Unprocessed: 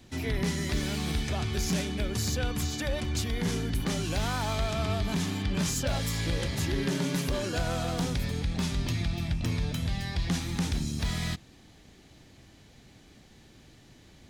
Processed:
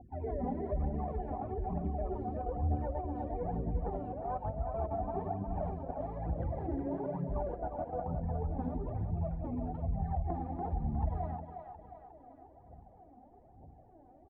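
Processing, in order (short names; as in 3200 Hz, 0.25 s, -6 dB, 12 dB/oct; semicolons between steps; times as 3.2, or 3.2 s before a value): on a send: echo 0.115 s -22 dB; on the sum: phaser 1.1 Hz, delay 4.2 ms, feedback 76%; spectral gate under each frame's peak -25 dB strong; ladder low-pass 800 Hz, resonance 75%; low shelf 89 Hz -9 dB; notches 60/120/180/240/300/360 Hz; negative-ratio compressor -38 dBFS, ratio -0.5; bell 65 Hz +11 dB 0.73 oct; split-band echo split 460 Hz, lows 85 ms, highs 0.359 s, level -6 dB; Doppler distortion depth 0.12 ms; gain +1.5 dB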